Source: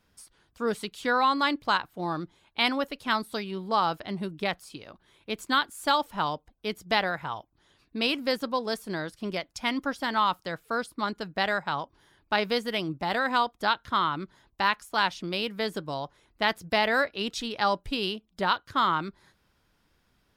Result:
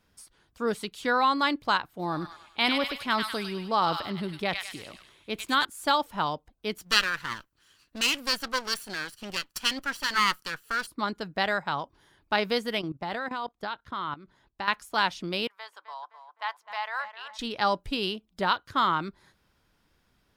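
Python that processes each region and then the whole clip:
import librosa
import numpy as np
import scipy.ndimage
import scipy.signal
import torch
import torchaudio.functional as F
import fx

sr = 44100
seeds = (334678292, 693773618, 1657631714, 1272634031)

y = fx.chain(x, sr, fx.echo_wet_highpass(ms=100, feedback_pct=44, hz=1700.0, wet_db=-4.0),
    fx.transient(attack_db=-1, sustain_db=4), at=(1.89, 5.65))
y = fx.chain(y, sr, fx.lower_of_two(delay_ms=0.67),
    fx.tilt_shelf(db=-6.5, hz=940.0), at=(6.78, 10.87))
y = fx.chain(y, sr, fx.level_steps(step_db=16),
    fx.high_shelf(hz=5600.0, db=-8.0), at=(12.79, 14.68))
y = fx.chain(y, sr, fx.ladder_highpass(hz=870.0, resonance_pct=60),
    fx.high_shelf(hz=6100.0, db=-8.0),
    fx.echo_tape(ms=258, feedback_pct=50, wet_db=-9, lp_hz=2300.0, drive_db=23.0, wow_cents=18), at=(15.47, 17.39))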